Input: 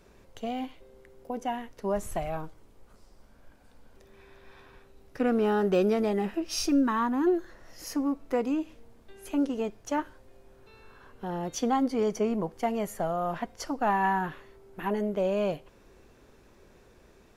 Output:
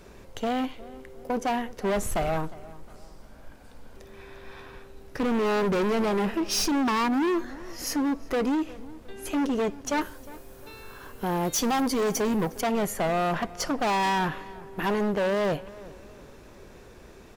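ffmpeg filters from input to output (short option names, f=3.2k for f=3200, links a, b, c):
-filter_complex "[0:a]asettb=1/sr,asplit=3[a][b][c];[a]atrim=end=10.014[d];[b]atrim=start=10.01:end=12.61,asetpts=PTS-STARTPTS,afade=t=in:d=0.004:c=qsin,afade=t=out:st=2.596:d=0.004:c=qsin,aemphasis=mode=production:type=50fm[e];[c]atrim=start=12.606[f];[d][e]acrossfade=d=0.004:c1=hsin:c2=qsin[g];[g][f]acrossfade=d=0.004:c1=qsin:c2=hsin,volume=31.5dB,asoftclip=hard,volume=-31.5dB,asplit=2[h][i];[i]adelay=357,lowpass=f=2.5k:p=1,volume=-19dB,asplit=2[j][k];[k]adelay=357,lowpass=f=2.5k:p=1,volume=0.41,asplit=2[l][m];[m]adelay=357,lowpass=f=2.5k:p=1,volume=0.41[n];[h][j][l][n]amix=inputs=4:normalize=0,volume=8.5dB"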